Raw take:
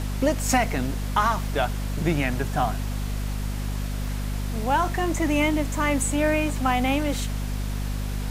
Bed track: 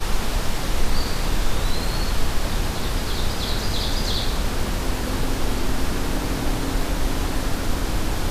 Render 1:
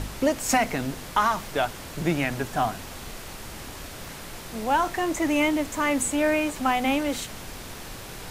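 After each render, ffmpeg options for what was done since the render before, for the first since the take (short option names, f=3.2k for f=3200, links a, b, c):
-af "bandreject=f=50:t=h:w=4,bandreject=f=100:t=h:w=4,bandreject=f=150:t=h:w=4,bandreject=f=200:t=h:w=4,bandreject=f=250:t=h:w=4"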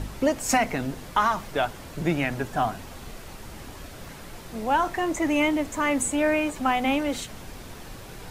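-af "afftdn=nr=6:nf=-40"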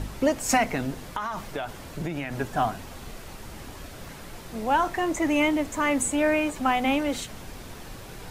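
-filter_complex "[0:a]asettb=1/sr,asplit=3[a][b][c];[a]atrim=end=1.074[d];[b]atrim=start=1.07:end=2.35,asetpts=PTS-STARTPTS,afade=t=in:d=0.004:c=qsin,afade=t=out:st=1.276:d=0.004:c=qsin,acompressor=threshold=-26dB:ratio=10:attack=3.2:release=140:knee=1:detection=peak[e];[c]atrim=start=2.346[f];[d][e]acrossfade=d=0.004:c1=hsin:c2=qsin[g];[g][f]acrossfade=d=0.004:c1=qsin:c2=hsin"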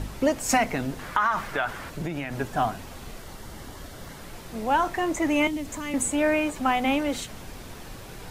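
-filter_complex "[0:a]asettb=1/sr,asplit=3[a][b][c];[a]atrim=end=0.994[d];[b]atrim=start=0.99:end=1.9,asetpts=PTS-STARTPTS,afade=t=in:d=0.004:c=qsin,afade=t=out:st=0.906:d=0.004:c=qsin,equalizer=f=1.5k:w=0.97:g=11.5[e];[c]atrim=start=1.896[f];[d][e]acrossfade=d=0.004:c1=hsin:c2=qsin[g];[g][f]acrossfade=d=0.004:c1=qsin:c2=hsin,asettb=1/sr,asplit=3[h][i][j];[h]atrim=end=3.204[k];[i]atrim=start=3.2:end=4.21,asetpts=PTS-STARTPTS,afade=t=in:d=0.004:c=qsin,afade=t=out:st=1.006:d=0.004:c=qsin,bandreject=f=2.5k:w=7.4[l];[j]atrim=start=4.206[m];[k][l]acrossfade=d=0.004:c1=hsin:c2=qsin[n];[n][m]acrossfade=d=0.004:c1=qsin:c2=hsin,asettb=1/sr,asplit=3[o][p][q];[o]atrim=end=5.474[r];[p]atrim=start=5.47:end=5.94,asetpts=PTS-STARTPTS,afade=t=in:d=0.004:c=qsin,afade=t=out:st=0.466:d=0.004:c=qsin,acrossover=split=270|3000[s][t][u];[t]acompressor=threshold=-36dB:ratio=6:attack=3.2:release=140:knee=2.83:detection=peak[v];[s][v][u]amix=inputs=3:normalize=0[w];[q]atrim=start=5.936[x];[r][w]acrossfade=d=0.004:c1=hsin:c2=qsin[y];[y][x]acrossfade=d=0.004:c1=qsin:c2=hsin"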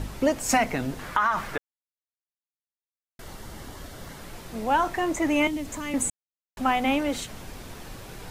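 -filter_complex "[0:a]asplit=5[a][b][c][d][e];[a]atrim=end=1.58,asetpts=PTS-STARTPTS,afade=t=out:st=1.576:d=0.004:c=hsin[f];[b]atrim=start=1.58:end=3.19,asetpts=PTS-STARTPTS,volume=0[g];[c]atrim=start=3.19:end=6.1,asetpts=PTS-STARTPTS,afade=t=in:d=0.004:c=hsin,afade=t=out:st=2.906:d=0.004:c=hsin[h];[d]atrim=start=6.1:end=6.57,asetpts=PTS-STARTPTS,volume=0[i];[e]atrim=start=6.57,asetpts=PTS-STARTPTS,afade=t=in:d=0.004:c=hsin[j];[f][g][h][i][j]concat=n=5:v=0:a=1"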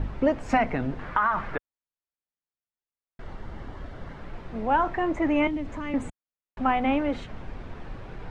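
-af "lowpass=2.1k,lowshelf=f=72:g=6.5"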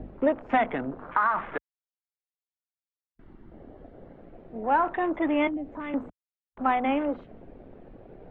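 -filter_complex "[0:a]afwtdn=0.0141,acrossover=split=220 4000:gain=0.2 1 0.0631[a][b][c];[a][b][c]amix=inputs=3:normalize=0"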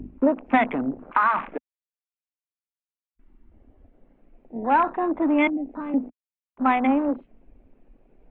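-af "afwtdn=0.0224,equalizer=f=250:t=o:w=0.67:g=8,equalizer=f=1k:t=o:w=0.67:g=4,equalizer=f=2.5k:t=o:w=0.67:g=11"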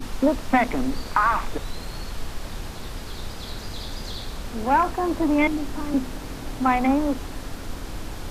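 -filter_complex "[1:a]volume=-10dB[a];[0:a][a]amix=inputs=2:normalize=0"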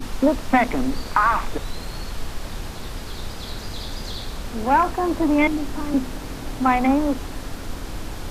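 -af "volume=2dB"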